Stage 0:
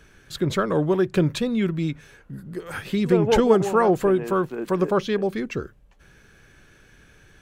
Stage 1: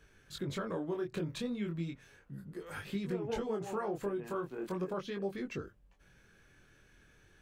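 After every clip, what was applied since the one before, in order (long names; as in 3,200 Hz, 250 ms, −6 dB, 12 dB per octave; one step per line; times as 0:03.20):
downward compressor 5 to 1, threshold −23 dBFS, peak gain reduction 10.5 dB
chorus effect 0.37 Hz, delay 20 ms, depth 4.7 ms
level −7.5 dB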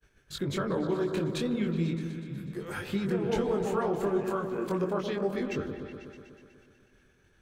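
downward expander −55 dBFS
on a send: echo whose low-pass opens from repeat to repeat 123 ms, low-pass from 750 Hz, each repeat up 1 octave, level −6 dB
on the sum: level +6 dB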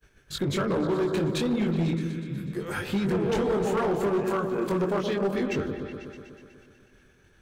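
hard clipping −26 dBFS, distortion −14 dB
level +5 dB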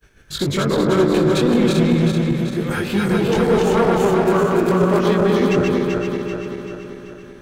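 feedback delay that plays each chunk backwards 193 ms, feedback 72%, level −2 dB
level +6.5 dB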